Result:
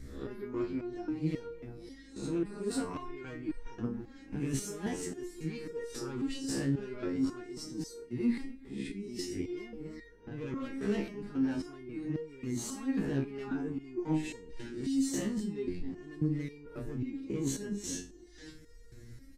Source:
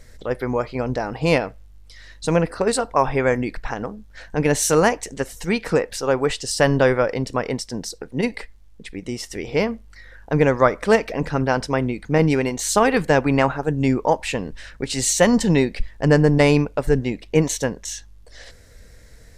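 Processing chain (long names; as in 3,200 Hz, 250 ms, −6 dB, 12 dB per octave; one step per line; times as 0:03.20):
peak hold with a rise ahead of every peak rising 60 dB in 0.42 s
tube saturation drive 14 dB, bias 0.25
low shelf with overshoot 430 Hz +9 dB, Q 3
on a send: tape delay 268 ms, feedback 54%, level −17 dB, low-pass 1,200 Hz
on the sum: downsampling to 32,000 Hz
reversed playback
downward compressor 5 to 1, threshold −22 dBFS, peak gain reduction 15.5 dB
reversed playback
step-sequenced resonator 3.7 Hz 68–470 Hz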